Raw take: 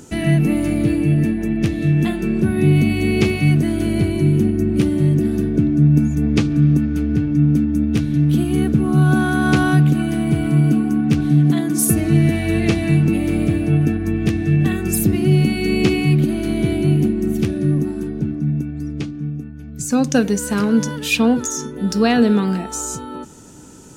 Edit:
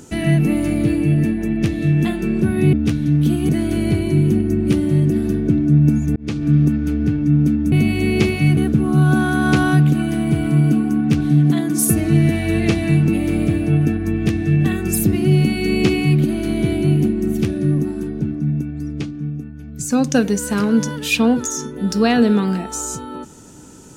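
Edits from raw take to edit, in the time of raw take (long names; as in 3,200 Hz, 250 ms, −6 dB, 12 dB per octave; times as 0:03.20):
0:02.73–0:03.58: swap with 0:07.81–0:08.57
0:06.25–0:06.59: fade in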